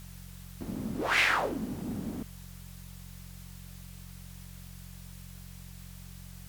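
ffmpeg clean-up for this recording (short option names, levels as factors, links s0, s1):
-af "adeclick=t=4,bandreject=f=45:t=h:w=4,bandreject=f=90:t=h:w=4,bandreject=f=135:t=h:w=4,bandreject=f=180:t=h:w=4,afwtdn=0.002"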